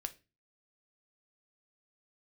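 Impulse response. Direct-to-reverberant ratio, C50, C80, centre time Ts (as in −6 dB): 8.0 dB, 18.0 dB, 25.0 dB, 4 ms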